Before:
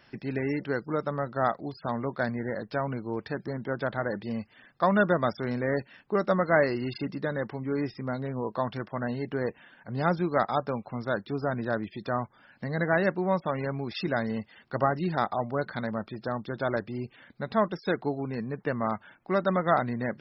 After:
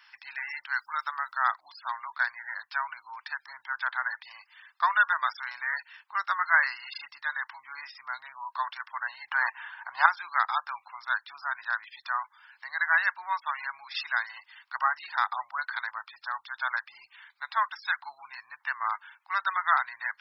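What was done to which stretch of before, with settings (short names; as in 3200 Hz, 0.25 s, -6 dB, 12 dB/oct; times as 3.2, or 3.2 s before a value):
0.76–1.44 high shelf 4600 Hz +11 dB
9.27–10.06 bell 770 Hz +14 dB 2.7 oct
whole clip: elliptic high-pass 940 Hz, stop band 50 dB; dynamic EQ 1600 Hz, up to +5 dB, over -45 dBFS, Q 3.2; gain +3.5 dB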